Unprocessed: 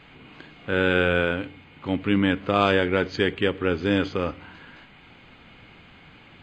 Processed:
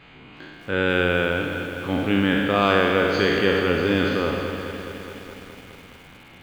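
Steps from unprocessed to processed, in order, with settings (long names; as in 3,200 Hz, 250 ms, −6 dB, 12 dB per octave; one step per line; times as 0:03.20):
peak hold with a decay on every bin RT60 1.63 s
feedback echo at a low word length 209 ms, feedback 80%, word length 7 bits, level −11 dB
level −1 dB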